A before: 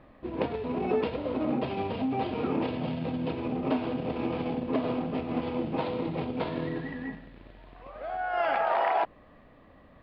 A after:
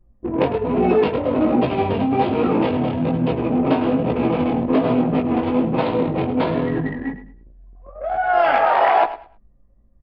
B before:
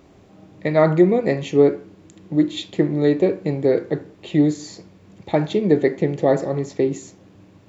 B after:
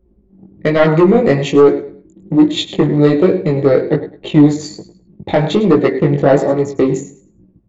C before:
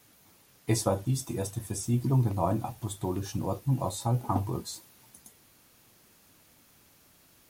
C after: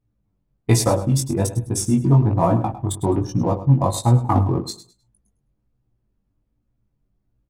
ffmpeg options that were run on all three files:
-filter_complex "[0:a]anlmdn=2.51,asplit=2[a][b];[b]acompressor=threshold=-26dB:ratio=12,volume=-1.5dB[c];[a][c]amix=inputs=2:normalize=0,aecho=1:1:104|208|312:0.2|0.0459|0.0106,aeval=exprs='0.794*sin(PI/2*1.78*val(0)/0.794)':c=same,flanger=delay=16.5:depth=5.1:speed=1.2,volume=1dB"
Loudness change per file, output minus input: +11.5, +6.5, +11.0 LU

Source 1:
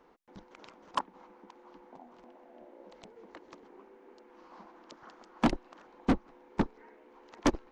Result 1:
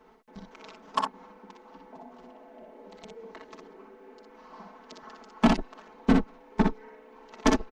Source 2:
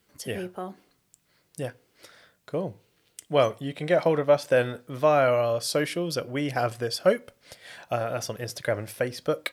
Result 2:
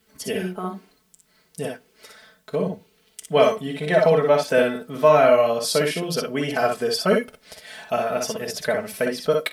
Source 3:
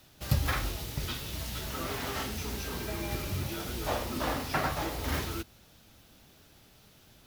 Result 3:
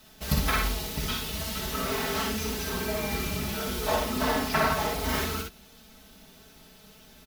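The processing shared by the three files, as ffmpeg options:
-af "aecho=1:1:4.6:0.92,aecho=1:1:49|60:0.266|0.631,volume=1.5dB"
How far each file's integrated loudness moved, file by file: +6.0, +5.0, +5.0 LU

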